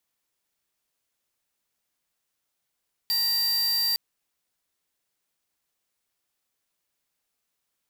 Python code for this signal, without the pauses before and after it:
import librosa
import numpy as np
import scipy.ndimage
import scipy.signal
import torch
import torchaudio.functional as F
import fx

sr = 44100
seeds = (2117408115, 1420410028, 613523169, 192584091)

y = fx.tone(sr, length_s=0.86, wave='square', hz=4690.0, level_db=-24.5)